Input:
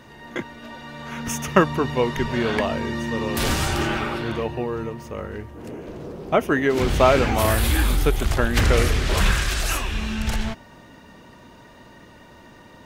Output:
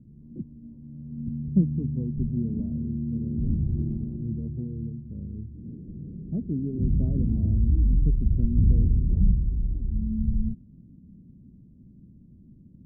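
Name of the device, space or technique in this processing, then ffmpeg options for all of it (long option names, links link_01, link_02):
the neighbour's flat through the wall: -af "lowpass=frequency=230:width=0.5412,lowpass=frequency=230:width=1.3066,equalizer=frequency=180:width_type=o:width=0.68:gain=3.5"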